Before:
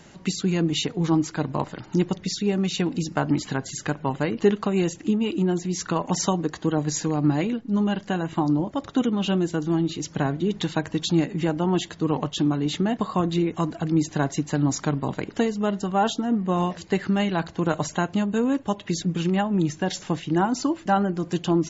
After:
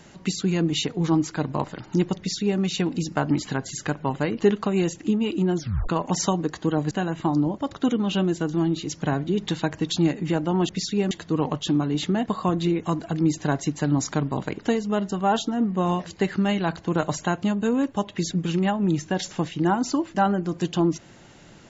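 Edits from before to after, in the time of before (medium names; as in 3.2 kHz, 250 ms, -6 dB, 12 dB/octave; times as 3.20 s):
2.18–2.60 s: copy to 11.82 s
5.57 s: tape stop 0.32 s
6.91–8.04 s: delete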